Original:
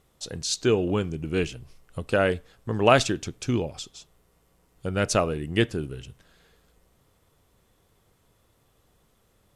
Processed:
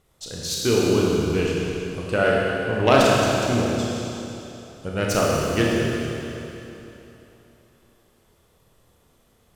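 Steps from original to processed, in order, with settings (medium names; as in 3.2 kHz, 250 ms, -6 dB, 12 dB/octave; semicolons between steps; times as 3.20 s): self-modulated delay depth 0.084 ms; tape echo 238 ms, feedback 67%, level -15 dB, low-pass 3.2 kHz; Schroeder reverb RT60 2.9 s, combs from 26 ms, DRR -4 dB; trim -1 dB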